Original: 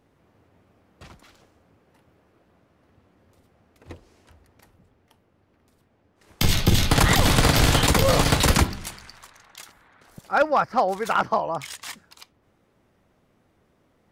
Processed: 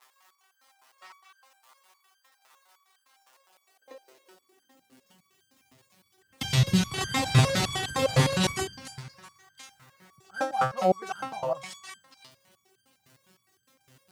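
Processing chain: in parallel at -11.5 dB: wrapped overs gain 15.5 dB; on the sum: LPF 9300 Hz 12 dB/oct; crackle 260/s -40 dBFS; high-pass sweep 970 Hz -> 120 Hz, 3.23–5.59; on a send at -23 dB: reverb RT60 2.6 s, pre-delay 43 ms; on the sum: stepped resonator 9.8 Hz 130–1600 Hz; gain +7 dB

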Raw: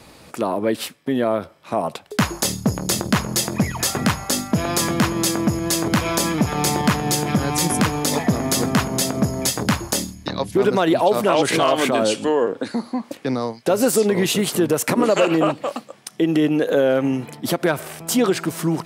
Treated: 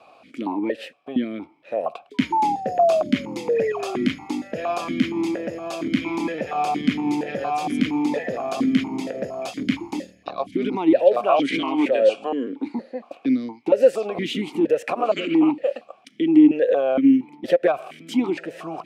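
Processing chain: 2.14–4.07 painted sound fall 350–1000 Hz -20 dBFS; 16.94–17.74 transient shaper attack +6 dB, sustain -6 dB; vowel sequencer 4.3 Hz; gain +7.5 dB

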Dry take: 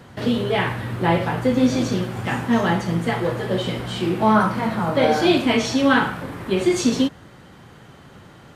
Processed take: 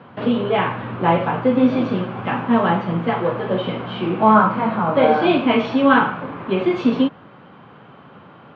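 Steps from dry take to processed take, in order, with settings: speaker cabinet 170–2800 Hz, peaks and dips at 350 Hz -4 dB, 1100 Hz +4 dB, 1900 Hz -8 dB; gain +3.5 dB

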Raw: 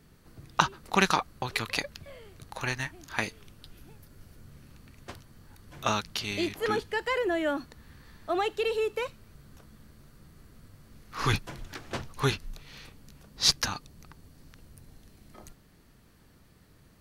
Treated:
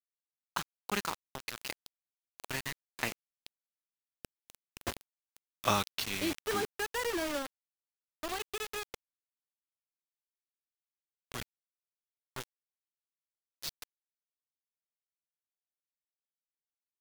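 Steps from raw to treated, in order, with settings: Doppler pass-by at 4.63, 17 m/s, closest 8.3 m; bit-crush 7-bit; gain +6.5 dB

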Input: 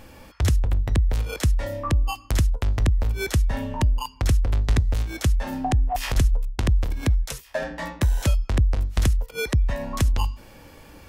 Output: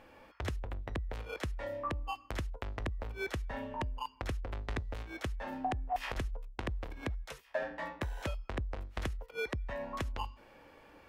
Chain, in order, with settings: tone controls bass -12 dB, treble -15 dB; gain -7 dB

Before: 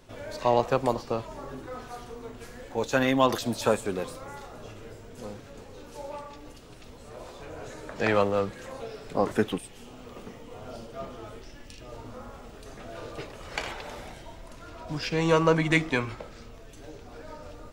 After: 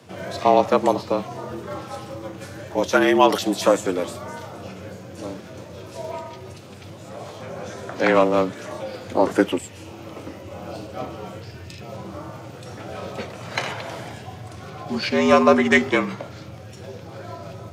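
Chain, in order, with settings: formant shift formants -2 st; frequency shift +82 Hz; gain +7 dB

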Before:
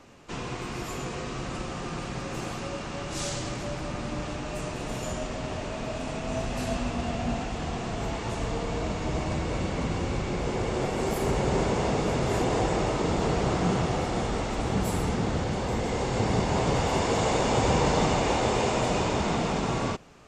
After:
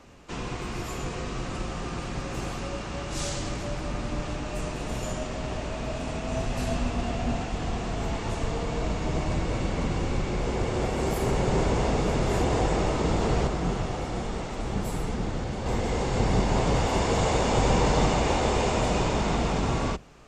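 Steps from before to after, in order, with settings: octaver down 2 oct, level 0 dB; 13.47–15.66 flange 1.2 Hz, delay 4 ms, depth 6.4 ms, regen -61%

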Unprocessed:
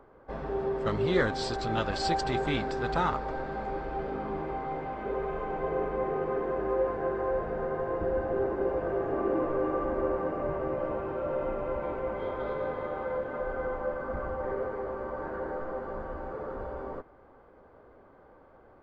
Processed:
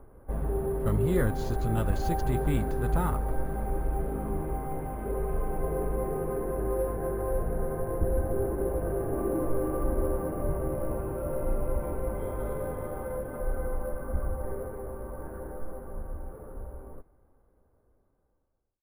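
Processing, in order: ending faded out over 6.22 s; in parallel at -8.5 dB: soft clip -30 dBFS, distortion -10 dB; on the sum: RIAA curve playback; sample-and-hold 4×; gain -6.5 dB

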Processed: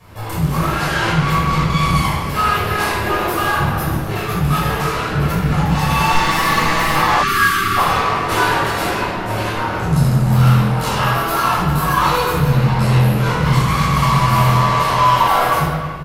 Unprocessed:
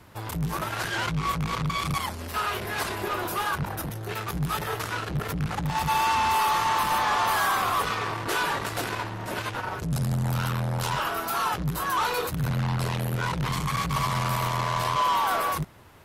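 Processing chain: 6.12–6.95 minimum comb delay 6.2 ms; speakerphone echo 0.32 s, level -10 dB; shoebox room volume 780 m³, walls mixed, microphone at 5.7 m; 7.23–7.77 spectral gain 430–1100 Hz -27 dB; gain -1.5 dB

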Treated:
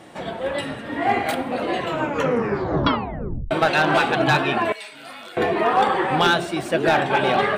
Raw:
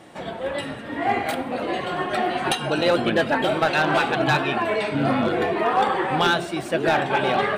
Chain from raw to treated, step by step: 1.76 tape stop 1.75 s; 4.72–5.37 differentiator; gain +2 dB

